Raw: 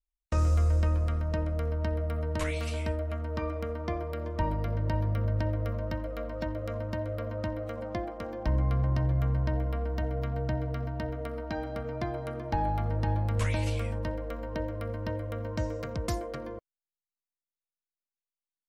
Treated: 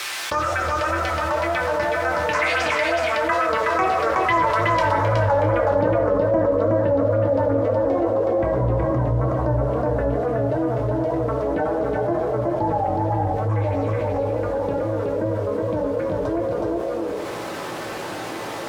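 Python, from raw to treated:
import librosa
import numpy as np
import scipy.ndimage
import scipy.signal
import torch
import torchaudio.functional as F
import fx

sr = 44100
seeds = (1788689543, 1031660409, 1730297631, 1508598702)

p1 = fx.dead_time(x, sr, dead_ms=0.081)
p2 = fx.doppler_pass(p1, sr, speed_mps=9, closest_m=7.1, pass_at_s=4.72)
p3 = fx.peak_eq(p2, sr, hz=1400.0, db=9.0, octaves=2.6)
p4 = fx.rider(p3, sr, range_db=4, speed_s=0.5)
p5 = p3 + (p4 * librosa.db_to_amplitude(-2.0))
p6 = fx.phaser_stages(p5, sr, stages=4, low_hz=190.0, high_hz=3500.0, hz=3.5, feedback_pct=35)
p7 = fx.wow_flutter(p6, sr, seeds[0], rate_hz=2.1, depth_cents=130.0)
p8 = fx.quant_dither(p7, sr, seeds[1], bits=10, dither='triangular')
p9 = fx.filter_sweep_bandpass(p8, sr, from_hz=2100.0, to_hz=420.0, start_s=4.66, end_s=5.99, q=0.79)
p10 = p9 + fx.echo_single(p9, sr, ms=370, db=-3.5, dry=0)
p11 = fx.rev_fdn(p10, sr, rt60_s=0.85, lf_ratio=0.85, hf_ratio=0.5, size_ms=53.0, drr_db=-0.5)
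p12 = fx.env_flatten(p11, sr, amount_pct=70)
y = p12 * librosa.db_to_amplitude(8.0)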